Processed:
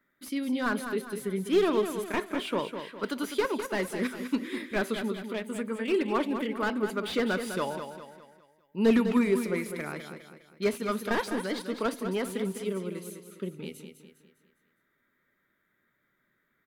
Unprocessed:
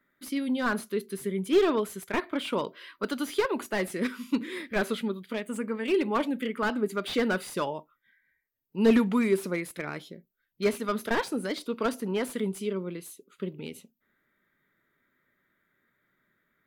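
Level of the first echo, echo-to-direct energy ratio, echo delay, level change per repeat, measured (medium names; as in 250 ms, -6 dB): -8.5 dB, -7.5 dB, 203 ms, -7.5 dB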